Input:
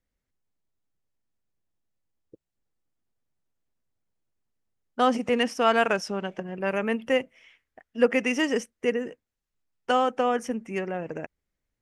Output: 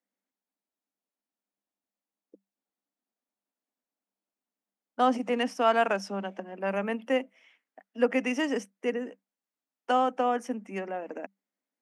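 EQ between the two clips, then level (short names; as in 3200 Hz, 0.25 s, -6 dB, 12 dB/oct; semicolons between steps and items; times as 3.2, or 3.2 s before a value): rippled Chebyshev high-pass 190 Hz, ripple 6 dB; 0.0 dB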